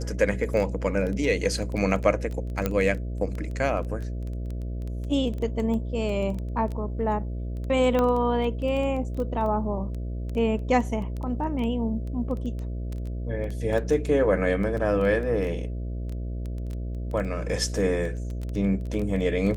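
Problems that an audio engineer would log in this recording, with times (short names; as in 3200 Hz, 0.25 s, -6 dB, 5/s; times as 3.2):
buzz 60 Hz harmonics 11 -31 dBFS
crackle 10/s -29 dBFS
2.66 pop -11 dBFS
7.99 pop -13 dBFS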